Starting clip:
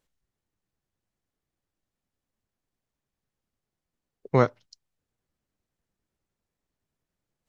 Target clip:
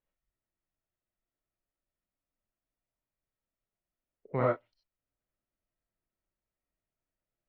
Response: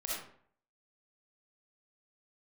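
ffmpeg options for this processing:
-filter_complex "[0:a]lowpass=frequency=2800:width=0.5412,lowpass=frequency=2800:width=1.3066[link_01];[1:a]atrim=start_sample=2205,atrim=end_sample=4410[link_02];[link_01][link_02]afir=irnorm=-1:irlink=0,volume=-7.5dB"

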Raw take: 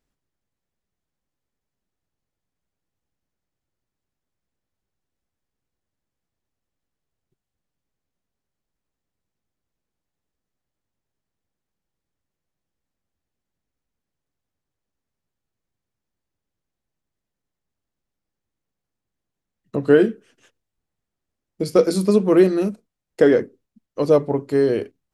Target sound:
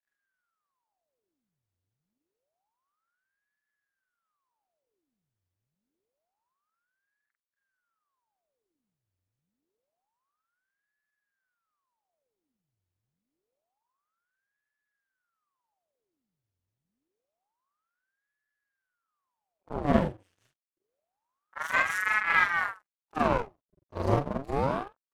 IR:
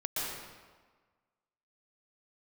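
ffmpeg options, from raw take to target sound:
-af "afftfilt=real='re':imag='-im':win_size=4096:overlap=0.75,aeval=exprs='max(val(0),0)':channel_layout=same,aeval=exprs='val(0)*sin(2*PI*900*n/s+900*0.9/0.27*sin(2*PI*0.27*n/s))':channel_layout=same"

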